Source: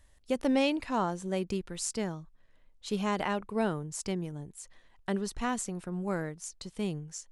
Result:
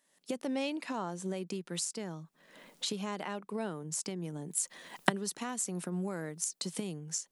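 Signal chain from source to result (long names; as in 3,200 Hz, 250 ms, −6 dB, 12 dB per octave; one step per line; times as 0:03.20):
camcorder AGC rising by 46 dB per second
0:04.50–0:06.97: high-shelf EQ 8,800 Hz +7.5 dB
elliptic high-pass filter 160 Hz, stop band 40 dB
high-shelf EQ 4,200 Hz +5.5 dB
level −7.5 dB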